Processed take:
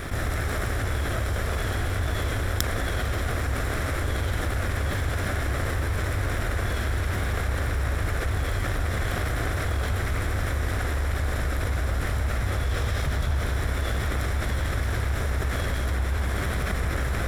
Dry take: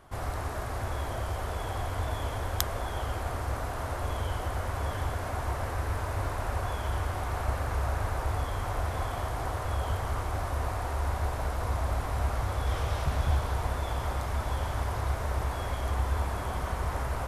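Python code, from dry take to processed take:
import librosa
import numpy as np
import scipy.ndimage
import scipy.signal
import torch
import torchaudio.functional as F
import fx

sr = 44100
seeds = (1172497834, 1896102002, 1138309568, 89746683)

y = fx.lower_of_two(x, sr, delay_ms=0.54)
y = fx.env_flatten(y, sr, amount_pct=70)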